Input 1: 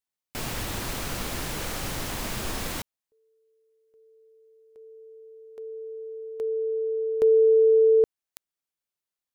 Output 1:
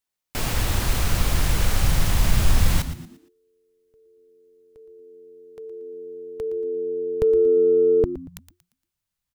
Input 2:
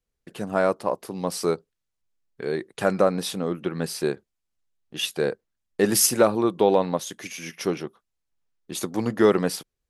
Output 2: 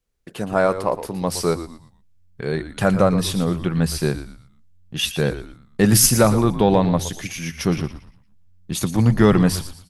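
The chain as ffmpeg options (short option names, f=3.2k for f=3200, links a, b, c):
-filter_complex "[0:a]asubboost=boost=8.5:cutoff=130,acontrast=22,asplit=5[a][b][c][d][e];[b]adelay=116,afreqshift=-90,volume=-12dB[f];[c]adelay=232,afreqshift=-180,volume=-21.1dB[g];[d]adelay=348,afreqshift=-270,volume=-30.2dB[h];[e]adelay=464,afreqshift=-360,volume=-39.4dB[i];[a][f][g][h][i]amix=inputs=5:normalize=0"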